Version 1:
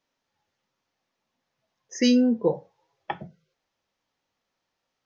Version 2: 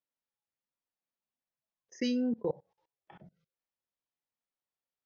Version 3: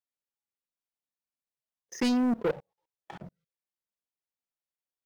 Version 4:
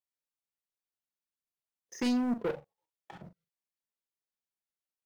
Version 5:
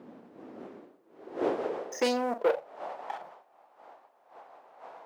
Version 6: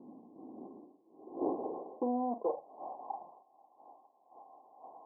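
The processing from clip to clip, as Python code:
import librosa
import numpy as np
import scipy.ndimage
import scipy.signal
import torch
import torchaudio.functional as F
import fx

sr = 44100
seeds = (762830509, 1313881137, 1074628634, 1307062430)

y1 = scipy.signal.sosfilt(scipy.signal.butter(2, 5800.0, 'lowpass', fs=sr, output='sos'), x)
y1 = fx.level_steps(y1, sr, step_db=24)
y1 = F.gain(torch.from_numpy(y1), -5.5).numpy()
y2 = fx.leveller(y1, sr, passes=3)
y3 = fx.doubler(y2, sr, ms=41.0, db=-10.0)
y3 = F.gain(torch.from_numpy(y3), -4.5).numpy()
y4 = fx.dmg_wind(y3, sr, seeds[0], corner_hz=570.0, level_db=-48.0)
y4 = fx.filter_sweep_highpass(y4, sr, from_hz=230.0, to_hz=760.0, start_s=0.19, end_s=3.04, q=2.6)
y4 = F.gain(torch.from_numpy(y4), 5.0).numpy()
y5 = scipy.signal.sosfilt(scipy.signal.cheby1(6, 9, 1100.0, 'lowpass', fs=sr, output='sos'), y4)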